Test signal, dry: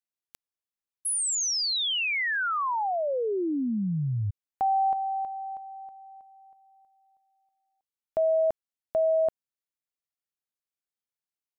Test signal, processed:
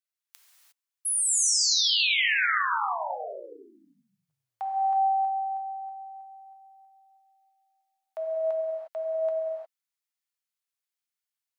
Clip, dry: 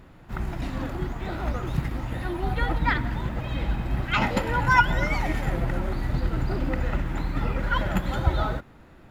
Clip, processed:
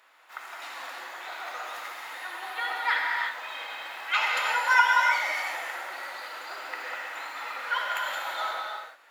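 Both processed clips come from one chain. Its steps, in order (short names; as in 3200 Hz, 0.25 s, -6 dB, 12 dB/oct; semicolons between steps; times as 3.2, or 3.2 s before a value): Bessel high-pass 1100 Hz, order 4; non-linear reverb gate 0.38 s flat, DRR -2 dB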